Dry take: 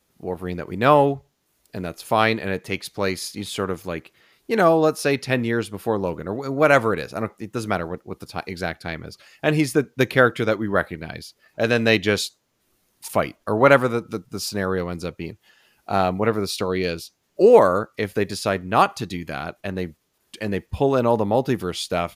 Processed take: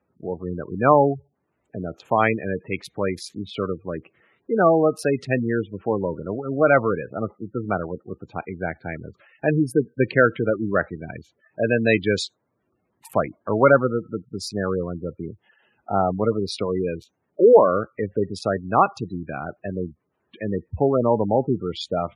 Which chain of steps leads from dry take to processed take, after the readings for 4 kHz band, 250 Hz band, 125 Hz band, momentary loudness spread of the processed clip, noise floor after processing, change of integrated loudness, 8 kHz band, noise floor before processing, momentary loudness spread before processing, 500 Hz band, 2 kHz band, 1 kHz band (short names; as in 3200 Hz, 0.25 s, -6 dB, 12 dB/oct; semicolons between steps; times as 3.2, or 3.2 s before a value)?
-6.5 dB, -0.5 dB, -0.5 dB, 16 LU, -74 dBFS, -1.0 dB, -8.0 dB, -68 dBFS, 16 LU, 0.0 dB, -3.0 dB, -1.0 dB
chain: Wiener smoothing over 9 samples; HPF 69 Hz 24 dB/oct; spectral gate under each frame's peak -15 dB strong